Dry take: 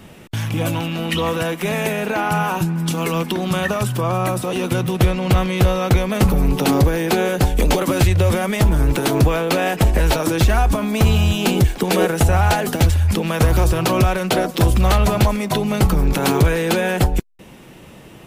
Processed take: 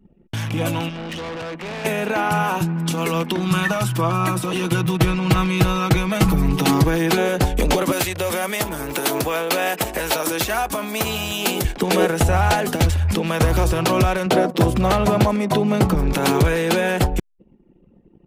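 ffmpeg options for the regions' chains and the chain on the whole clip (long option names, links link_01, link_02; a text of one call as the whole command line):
ffmpeg -i in.wav -filter_complex "[0:a]asettb=1/sr,asplit=3[link_01][link_02][link_03];[link_01]atrim=end=0.894[link_04];[link_02]atrim=start=0.89:end=1.85,asetpts=PTS-STARTPTS,afade=type=in:duration=0.004:curve=qsin,afade=type=out:start_time=0.956:duration=0.004:curve=qsin,acrossover=split=4700[link_05][link_06];[link_06]acompressor=threshold=-49dB:ratio=4:attack=1:release=60[link_07];[link_05][link_07]amix=inputs=2:normalize=0,asoftclip=type=hard:threshold=-27.5dB[link_08];[link_03]atrim=start=1.846[link_09];[link_04][link_08]acrossfade=duration=0.004:curve1=hsin:curve2=qsin[link_10];[link_10][link_09]acrossfade=duration=0.004:curve1=qsin:curve2=hsin,asettb=1/sr,asplit=3[link_11][link_12][link_13];[link_11]atrim=end=3.374[link_14];[link_12]atrim=start=3.37:end=7.18,asetpts=PTS-STARTPTS,afade=type=in:duration=0.004:curve=qsin,afade=type=out:start_time=3.806:duration=0.004:curve=qsin,equalizer=frequency=530:width=2.3:gain=-6,aecho=1:1:6.2:0.65,atrim=end_sample=168021[link_15];[link_13]atrim=start=7.176[link_16];[link_14][link_15]acrossfade=duration=0.004:curve1=hsin:curve2=qsin[link_17];[link_17][link_16]acrossfade=duration=0.004:curve1=qsin:curve2=hsin,asettb=1/sr,asplit=3[link_18][link_19][link_20];[link_18]atrim=end=7.924[link_21];[link_19]atrim=start=7.92:end=11.65,asetpts=PTS-STARTPTS,afade=type=in:duration=0.004:curve=qsin,afade=type=out:start_time=3.726:duration=0.004:curve=qsin,highpass=frequency=480:poles=1,highshelf=frequency=11000:gain=12[link_22];[link_20]atrim=start=11.646[link_23];[link_21][link_22]acrossfade=duration=0.004:curve1=hsin:curve2=qsin[link_24];[link_24][link_23]acrossfade=duration=0.004:curve1=qsin:curve2=hsin,asettb=1/sr,asplit=3[link_25][link_26][link_27];[link_25]atrim=end=14.264[link_28];[link_26]atrim=start=14.26:end=15.95,asetpts=PTS-STARTPTS,afade=type=in:duration=0.004:curve=qsin,afade=type=out:start_time=1.686:duration=0.004:curve=qsin,highpass=110,tiltshelf=frequency=1200:gain=3.5[link_29];[link_27]atrim=start=15.946[link_30];[link_28][link_29]acrossfade=duration=0.004:curve1=hsin:curve2=qsin[link_31];[link_31][link_30]acrossfade=duration=0.004:curve1=qsin:curve2=hsin,lowshelf=frequency=130:gain=-4.5,anlmdn=6.31,highshelf=frequency=12000:gain=-4" out.wav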